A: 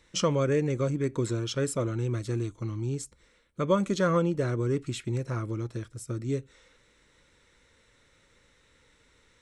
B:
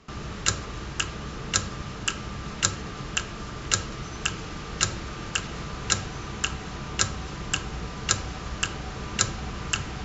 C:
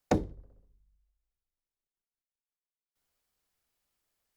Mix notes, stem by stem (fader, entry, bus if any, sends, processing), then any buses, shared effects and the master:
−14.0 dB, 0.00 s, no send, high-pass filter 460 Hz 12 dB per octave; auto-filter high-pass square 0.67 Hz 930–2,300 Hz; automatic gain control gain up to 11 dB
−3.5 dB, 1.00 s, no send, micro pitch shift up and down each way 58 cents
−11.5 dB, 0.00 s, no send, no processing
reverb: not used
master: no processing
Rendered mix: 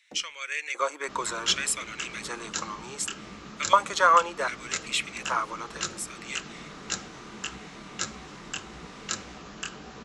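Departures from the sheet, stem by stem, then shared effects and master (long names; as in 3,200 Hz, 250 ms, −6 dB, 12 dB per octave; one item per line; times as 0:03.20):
stem A −14.0 dB → −2.5 dB
stem C −11.5 dB → −23.0 dB
master: extra low shelf with overshoot 150 Hz −10 dB, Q 1.5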